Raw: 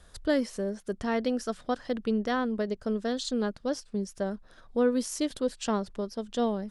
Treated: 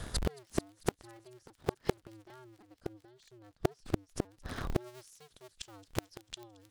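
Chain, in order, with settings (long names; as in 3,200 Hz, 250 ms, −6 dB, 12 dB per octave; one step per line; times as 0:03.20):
sub-harmonics by changed cycles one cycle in 2, inverted
high-shelf EQ 2,400 Hz −2 dB, from 0:04.77 +6 dB
gate with flip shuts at −27 dBFS, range −40 dB
delay with a high-pass on its return 222 ms, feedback 79%, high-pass 3,200 Hz, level −23 dB
amplitude modulation by smooth noise, depth 60%
level +16.5 dB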